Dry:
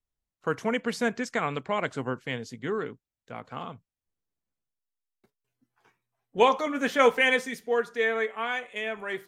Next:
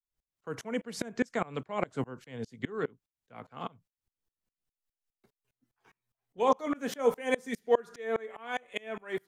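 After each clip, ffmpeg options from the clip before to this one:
-filter_complex "[0:a]acrossover=split=210|1000|5800[a][b][c][d];[c]acompressor=threshold=-37dB:ratio=6[e];[a][b][e][d]amix=inputs=4:normalize=0,aeval=exprs='val(0)*pow(10,-29*if(lt(mod(-4.9*n/s,1),2*abs(-4.9)/1000),1-mod(-4.9*n/s,1)/(2*abs(-4.9)/1000),(mod(-4.9*n/s,1)-2*abs(-4.9)/1000)/(1-2*abs(-4.9)/1000))/20)':c=same,volume=6dB"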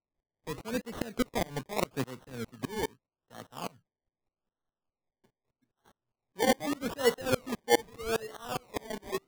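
-af "acrusher=samples=26:mix=1:aa=0.000001:lfo=1:lforange=15.6:lforate=0.81"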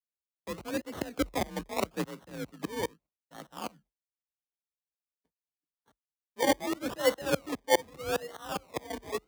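-af "afreqshift=42,agate=range=-33dB:threshold=-56dB:ratio=3:detection=peak"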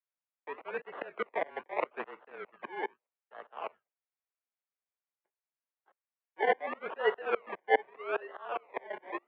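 -af "highpass=f=550:t=q:w=0.5412,highpass=f=550:t=q:w=1.307,lowpass=f=2.6k:t=q:w=0.5176,lowpass=f=2.6k:t=q:w=0.7071,lowpass=f=2.6k:t=q:w=1.932,afreqshift=-78,volume=1.5dB"

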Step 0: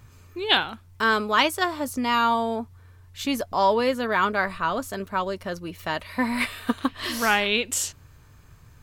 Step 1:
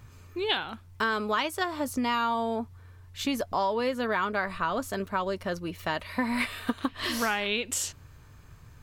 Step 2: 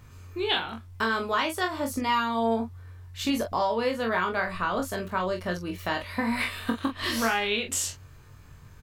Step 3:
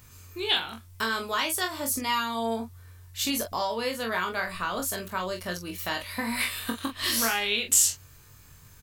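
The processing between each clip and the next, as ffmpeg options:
-af "acompressor=threshold=-24dB:ratio=6,equalizer=f=15k:t=o:w=1.6:g=-3"
-af "aecho=1:1:22|44:0.562|0.398"
-af "crystalizer=i=4:c=0,volume=-4.5dB"

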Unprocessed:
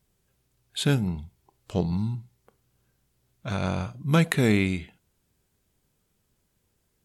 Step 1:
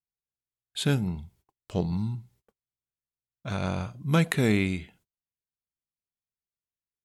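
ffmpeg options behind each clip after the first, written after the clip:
-af "agate=range=-31dB:threshold=-57dB:ratio=16:detection=peak,volume=-2dB"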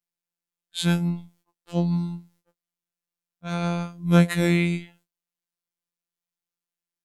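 -af "afftfilt=real='hypot(re,im)*cos(PI*b)':imag='0':win_size=1024:overlap=0.75,afftfilt=real='re*2*eq(mod(b,4),0)':imag='im*2*eq(mod(b,4),0)':win_size=2048:overlap=0.75,volume=3dB"

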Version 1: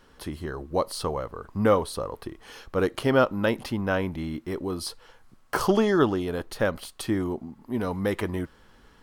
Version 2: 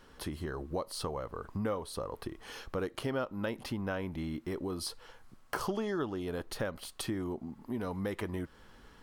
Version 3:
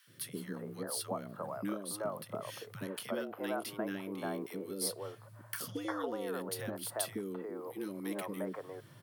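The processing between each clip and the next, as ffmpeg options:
-af "acompressor=threshold=-34dB:ratio=3,volume=-1dB"
-filter_complex "[0:a]afreqshift=100,acrossover=split=440|1600[a][b][c];[a]adelay=70[d];[b]adelay=350[e];[d][e][c]amix=inputs=3:normalize=0,aexciter=amount=3.5:drive=3.4:freq=8.9k,volume=-1dB"

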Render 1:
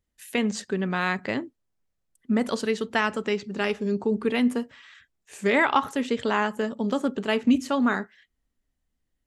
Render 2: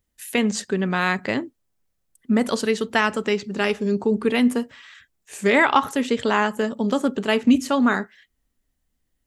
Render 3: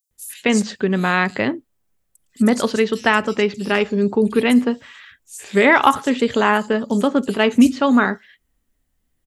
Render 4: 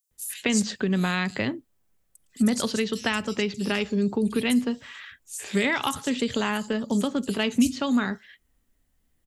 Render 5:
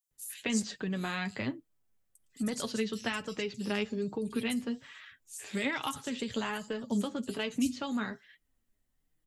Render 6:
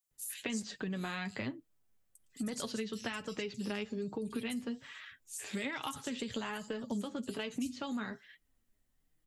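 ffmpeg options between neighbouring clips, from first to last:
-af "highshelf=f=8.5k:g=7,volume=4dB"
-filter_complex "[0:a]acrossover=split=4900[a][b];[a]adelay=110[c];[c][b]amix=inputs=2:normalize=0,volume=4dB"
-filter_complex "[0:a]acrossover=split=180|3000[a][b][c];[b]acompressor=threshold=-27dB:ratio=5[d];[a][d][c]amix=inputs=3:normalize=0"
-af "flanger=delay=6.3:depth=3.4:regen=32:speed=1.2:shape=sinusoidal,volume=-4.5dB"
-af "acompressor=threshold=-37dB:ratio=3,volume=1dB"

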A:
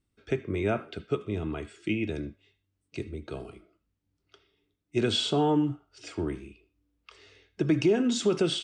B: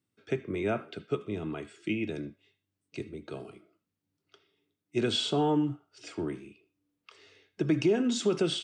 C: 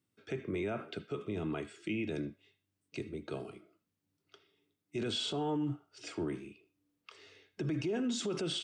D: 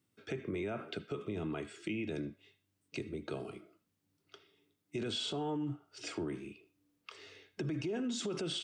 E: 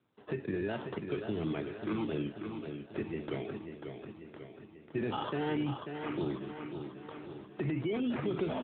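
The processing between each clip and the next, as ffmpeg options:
-af "highpass=f=110:w=0.5412,highpass=f=110:w=1.3066,volume=-2dB"
-af "alimiter=level_in=3.5dB:limit=-24dB:level=0:latency=1:release=43,volume=-3.5dB"
-af "acompressor=threshold=-42dB:ratio=2,volume=3.5dB"
-af "acrusher=samples=16:mix=1:aa=0.000001:lfo=1:lforange=9.6:lforate=0.44,aecho=1:1:541|1082|1623|2164|2705|3246|3787:0.447|0.255|0.145|0.0827|0.0472|0.0269|0.0153,volume=3.5dB" -ar 8000 -c:a libopencore_amrnb -b:a 10200

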